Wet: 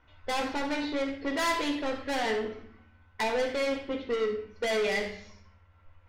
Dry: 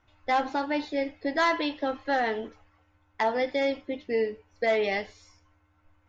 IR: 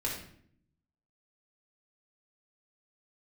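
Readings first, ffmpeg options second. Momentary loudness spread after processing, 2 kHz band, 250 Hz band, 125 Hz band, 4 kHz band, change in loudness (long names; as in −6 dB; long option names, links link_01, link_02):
6 LU, −2.0 dB, −1.0 dB, can't be measured, +2.0 dB, −2.0 dB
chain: -filter_complex "[0:a]lowpass=3200,asoftclip=type=tanh:threshold=-31dB,asplit=2[link_01][link_02];[1:a]atrim=start_sample=2205,highshelf=frequency=2100:gain=11.5[link_03];[link_02][link_03]afir=irnorm=-1:irlink=0,volume=-6.5dB[link_04];[link_01][link_04]amix=inputs=2:normalize=0"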